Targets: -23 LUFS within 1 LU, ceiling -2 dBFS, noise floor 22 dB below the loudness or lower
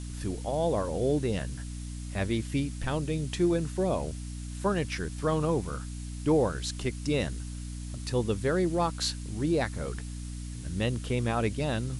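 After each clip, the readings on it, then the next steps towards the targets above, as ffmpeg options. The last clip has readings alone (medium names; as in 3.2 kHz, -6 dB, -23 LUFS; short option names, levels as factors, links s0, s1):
hum 60 Hz; highest harmonic 300 Hz; hum level -35 dBFS; noise floor -38 dBFS; noise floor target -53 dBFS; loudness -30.5 LUFS; peak level -14.0 dBFS; loudness target -23.0 LUFS
-> -af "bandreject=f=60:t=h:w=4,bandreject=f=120:t=h:w=4,bandreject=f=180:t=h:w=4,bandreject=f=240:t=h:w=4,bandreject=f=300:t=h:w=4"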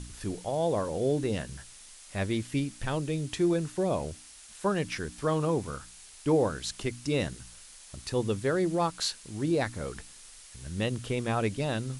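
hum not found; noise floor -51 dBFS; noise floor target -53 dBFS
-> -af "afftdn=nr=6:nf=-51"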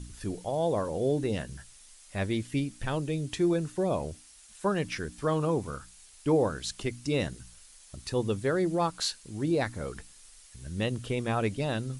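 noise floor -54 dBFS; loudness -30.5 LUFS; peak level -15.0 dBFS; loudness target -23.0 LUFS
-> -af "volume=2.37"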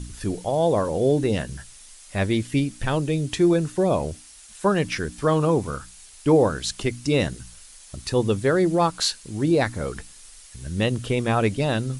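loudness -23.0 LUFS; peak level -7.5 dBFS; noise floor -47 dBFS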